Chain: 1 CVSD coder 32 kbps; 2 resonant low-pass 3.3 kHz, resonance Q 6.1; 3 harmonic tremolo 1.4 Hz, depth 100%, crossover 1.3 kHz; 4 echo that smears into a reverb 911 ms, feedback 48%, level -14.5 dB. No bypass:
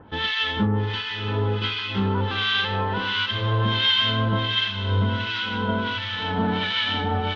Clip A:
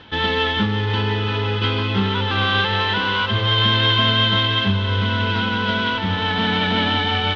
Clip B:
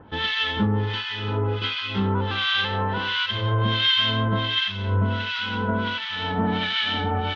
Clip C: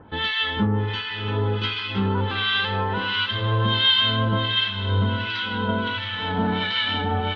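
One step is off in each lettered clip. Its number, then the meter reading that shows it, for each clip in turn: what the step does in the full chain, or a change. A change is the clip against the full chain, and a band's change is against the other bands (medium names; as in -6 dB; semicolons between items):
3, loudness change +4.5 LU; 4, echo-to-direct -13.5 dB to none; 1, crest factor change +1.5 dB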